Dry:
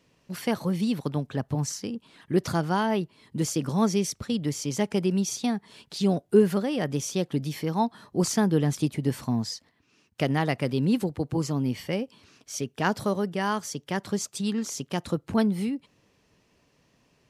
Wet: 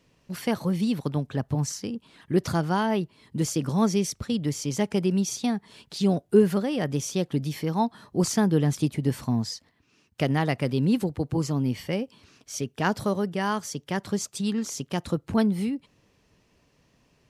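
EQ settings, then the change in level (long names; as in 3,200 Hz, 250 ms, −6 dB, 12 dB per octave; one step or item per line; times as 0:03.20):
low-shelf EQ 83 Hz +7.5 dB
0.0 dB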